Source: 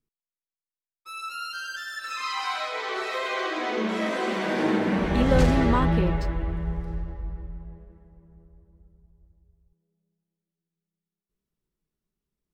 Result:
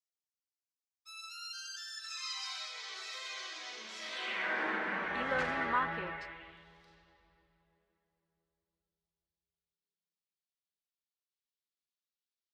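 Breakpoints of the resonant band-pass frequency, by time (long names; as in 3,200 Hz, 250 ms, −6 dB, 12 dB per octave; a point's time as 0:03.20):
resonant band-pass, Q 1.8
0:03.99 5,700 Hz
0:04.52 1,600 Hz
0:06.06 1,600 Hz
0:06.69 4,000 Hz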